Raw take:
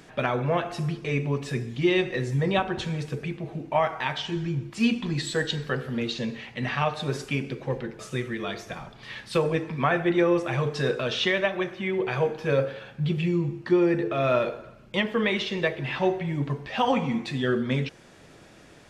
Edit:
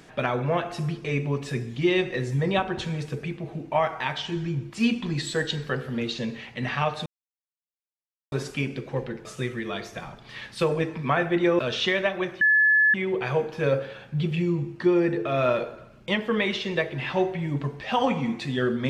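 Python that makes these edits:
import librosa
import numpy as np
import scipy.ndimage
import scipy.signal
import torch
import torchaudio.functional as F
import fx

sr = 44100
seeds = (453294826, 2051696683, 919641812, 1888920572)

y = fx.edit(x, sr, fx.insert_silence(at_s=7.06, length_s=1.26),
    fx.cut(start_s=10.33, length_s=0.65),
    fx.insert_tone(at_s=11.8, length_s=0.53, hz=1720.0, db=-15.5), tone=tone)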